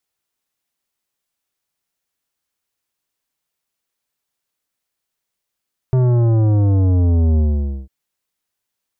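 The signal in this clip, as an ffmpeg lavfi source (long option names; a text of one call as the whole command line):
ffmpeg -f lavfi -i "aevalsrc='0.237*clip((1.95-t)/0.5,0,1)*tanh(3.98*sin(2*PI*130*1.95/log(65/130)*(exp(log(65/130)*t/1.95)-1)))/tanh(3.98)':duration=1.95:sample_rate=44100" out.wav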